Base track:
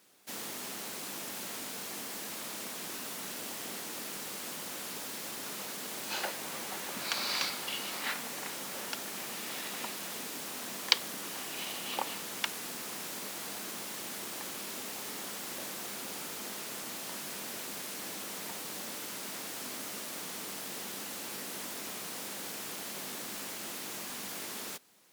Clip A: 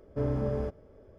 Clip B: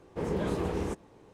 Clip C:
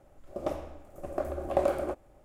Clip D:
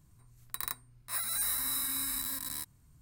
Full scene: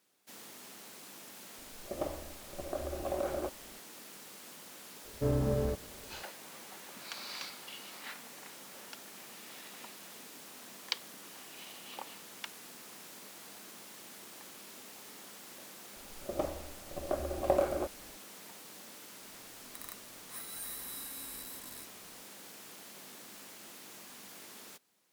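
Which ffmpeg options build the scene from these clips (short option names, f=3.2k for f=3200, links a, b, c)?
-filter_complex "[3:a]asplit=2[a][b];[0:a]volume=-10dB[c];[a]alimiter=limit=-20.5dB:level=0:latency=1:release=71,atrim=end=2.24,asetpts=PTS-STARTPTS,volume=-3.5dB,afade=t=in:d=0.004:c=hsin,afade=t=out:st=2.236:d=0.004:c=hsin,adelay=1550[d];[1:a]atrim=end=1.18,asetpts=PTS-STARTPTS,volume=-0.5dB,afade=t=in:d=0.004:c=hsin,afade=t=out:st=1.176:d=0.004:c=hsin,adelay=222705S[e];[b]atrim=end=2.24,asetpts=PTS-STARTPTS,volume=-2dB,afade=t=in:d=0.004:c=hsin,afade=t=out:st=2.236:d=0.004:c=hsin,adelay=15930[f];[4:a]atrim=end=3.01,asetpts=PTS-STARTPTS,volume=-11dB,afade=t=in:d=0.004:c=hsin,afade=t=out:st=3.006:d=0.004:c=hsin,adelay=19210[g];[c][d][e][f][g]amix=inputs=5:normalize=0"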